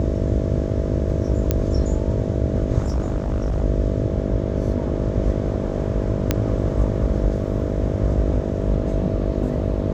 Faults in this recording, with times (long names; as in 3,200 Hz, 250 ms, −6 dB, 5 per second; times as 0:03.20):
mains buzz 50 Hz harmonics 13 −25 dBFS
0:01.51: click −5 dBFS
0:02.78–0:03.64: clipping −17.5 dBFS
0:06.31: click −4 dBFS